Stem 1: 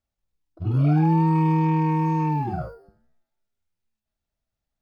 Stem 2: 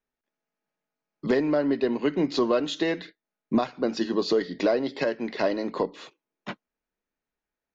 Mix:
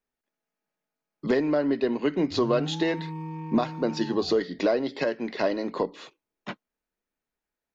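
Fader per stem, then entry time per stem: -15.5 dB, -0.5 dB; 1.70 s, 0.00 s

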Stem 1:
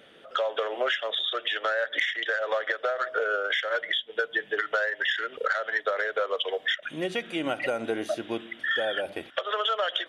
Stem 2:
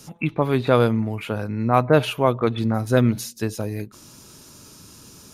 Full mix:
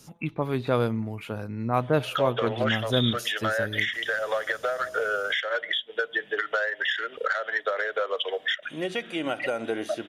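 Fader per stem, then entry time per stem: 0.0 dB, -7.0 dB; 1.80 s, 0.00 s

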